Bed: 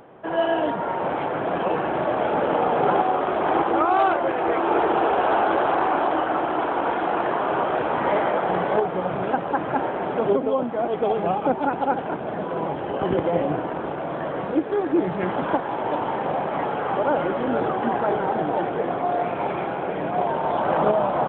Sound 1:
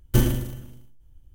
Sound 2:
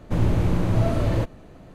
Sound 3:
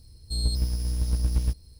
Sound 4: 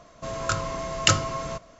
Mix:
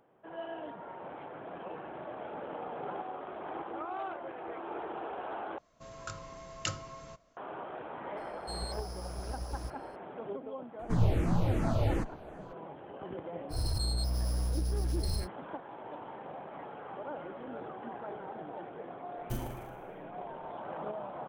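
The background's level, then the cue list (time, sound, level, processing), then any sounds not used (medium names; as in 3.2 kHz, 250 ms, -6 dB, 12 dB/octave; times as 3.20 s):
bed -19.5 dB
5.58 s: replace with 4 -16 dB
8.17 s: add 3 -15.5 dB + peaking EQ 6.2 kHz +8.5 dB 1.9 oct
10.79 s: add 2 -4 dB + barber-pole phaser -2.7 Hz
13.49 s: add 3 -12 dB, fades 0.10 s + level flattener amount 100%
19.16 s: add 1 -18 dB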